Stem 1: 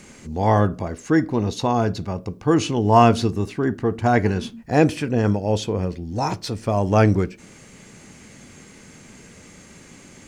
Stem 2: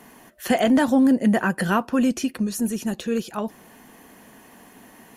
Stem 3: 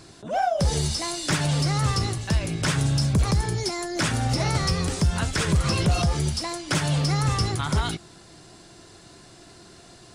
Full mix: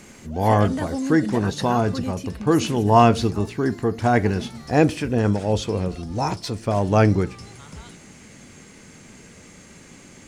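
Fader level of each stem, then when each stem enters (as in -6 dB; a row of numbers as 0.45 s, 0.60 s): -0.5 dB, -10.0 dB, -17.5 dB; 0.00 s, 0.00 s, 0.00 s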